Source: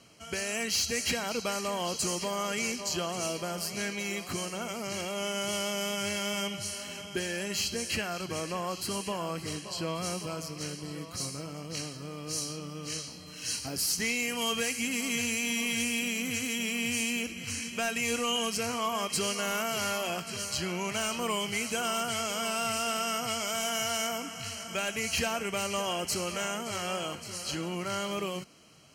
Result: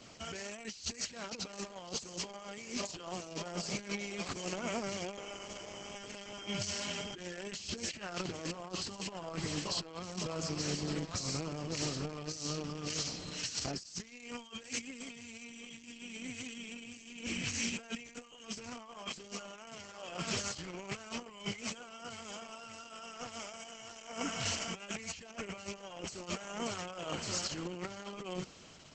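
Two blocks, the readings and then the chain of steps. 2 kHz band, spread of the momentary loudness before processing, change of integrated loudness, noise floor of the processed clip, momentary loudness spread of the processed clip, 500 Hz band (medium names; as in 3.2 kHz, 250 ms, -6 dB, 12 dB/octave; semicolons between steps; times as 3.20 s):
-10.5 dB, 8 LU, -8.5 dB, -54 dBFS, 10 LU, -9.0 dB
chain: compressor with a negative ratio -37 dBFS, ratio -0.5; trim -1 dB; Opus 10 kbps 48 kHz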